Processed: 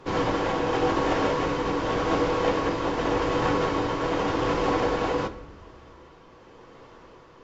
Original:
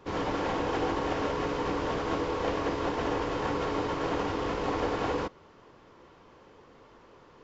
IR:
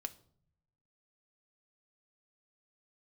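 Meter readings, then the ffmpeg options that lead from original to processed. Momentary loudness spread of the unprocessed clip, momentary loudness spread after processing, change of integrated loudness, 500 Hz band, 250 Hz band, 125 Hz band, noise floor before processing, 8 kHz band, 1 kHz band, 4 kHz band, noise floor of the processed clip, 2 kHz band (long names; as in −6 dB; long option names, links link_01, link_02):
1 LU, 3 LU, +5.5 dB, +5.5 dB, +5.0 dB, +5.5 dB, −56 dBFS, can't be measured, +5.0 dB, +5.5 dB, −51 dBFS, +5.5 dB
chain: -filter_complex "[0:a]tremolo=f=0.88:d=0.28[link_01];[1:a]atrim=start_sample=2205,asetrate=22050,aresample=44100[link_02];[link_01][link_02]afir=irnorm=-1:irlink=0,volume=5dB"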